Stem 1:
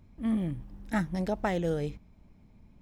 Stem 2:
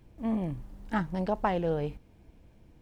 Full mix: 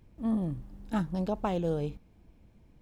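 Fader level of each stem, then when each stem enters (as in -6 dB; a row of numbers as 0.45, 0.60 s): -6.0, -5.0 dB; 0.00, 0.00 s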